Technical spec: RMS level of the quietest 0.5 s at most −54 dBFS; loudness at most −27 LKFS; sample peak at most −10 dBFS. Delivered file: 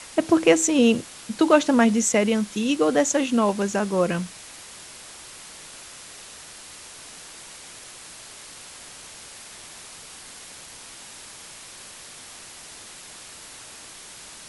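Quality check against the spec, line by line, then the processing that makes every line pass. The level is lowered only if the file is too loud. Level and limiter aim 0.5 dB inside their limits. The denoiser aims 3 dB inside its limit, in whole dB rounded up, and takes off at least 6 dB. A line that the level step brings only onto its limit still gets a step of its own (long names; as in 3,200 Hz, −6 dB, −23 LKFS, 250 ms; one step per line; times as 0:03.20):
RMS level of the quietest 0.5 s −43 dBFS: out of spec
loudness −21.0 LKFS: out of spec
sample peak −4.0 dBFS: out of spec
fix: broadband denoise 8 dB, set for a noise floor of −43 dBFS
level −6.5 dB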